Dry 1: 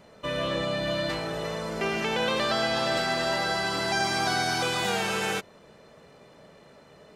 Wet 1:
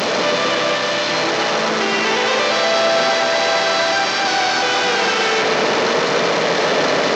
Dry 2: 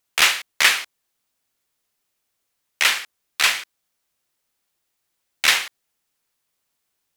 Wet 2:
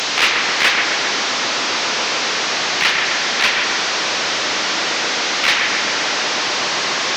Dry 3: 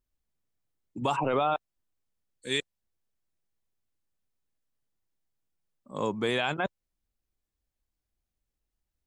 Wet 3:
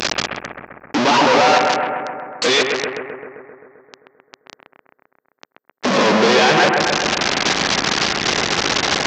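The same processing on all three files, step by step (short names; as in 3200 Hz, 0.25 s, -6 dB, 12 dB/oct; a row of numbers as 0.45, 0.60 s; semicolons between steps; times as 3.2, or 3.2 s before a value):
delta modulation 32 kbps, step -15 dBFS; HPF 260 Hz 12 dB/oct; overloaded stage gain 9.5 dB; analogue delay 0.131 s, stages 2048, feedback 70%, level -4 dB; mismatched tape noise reduction decoder only; match loudness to -16 LUFS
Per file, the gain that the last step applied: +3.5, +2.0, +7.5 dB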